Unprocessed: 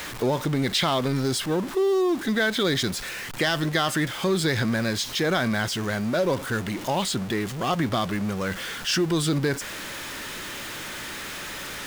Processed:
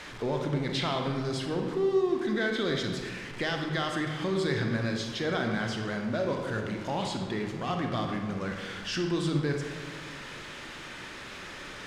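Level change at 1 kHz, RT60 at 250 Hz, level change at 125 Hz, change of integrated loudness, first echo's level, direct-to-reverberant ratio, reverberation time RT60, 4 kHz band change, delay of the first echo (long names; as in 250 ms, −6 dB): −6.0 dB, 2.1 s, −4.5 dB, −5.5 dB, no echo audible, 2.5 dB, 1.7 s, −8.5 dB, no echo audible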